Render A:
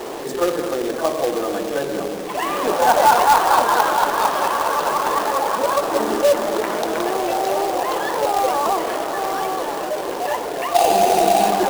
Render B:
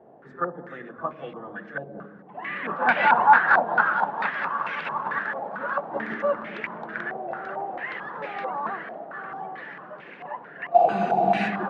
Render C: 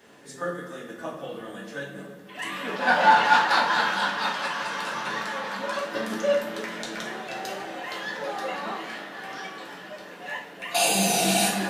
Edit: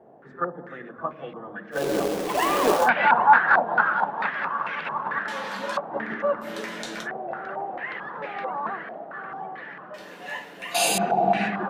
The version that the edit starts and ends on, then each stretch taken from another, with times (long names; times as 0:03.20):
B
0:01.79–0:02.82: punch in from A, crossfade 0.16 s
0:05.28–0:05.77: punch in from C
0:06.45–0:07.04: punch in from C, crossfade 0.10 s
0:09.94–0:10.98: punch in from C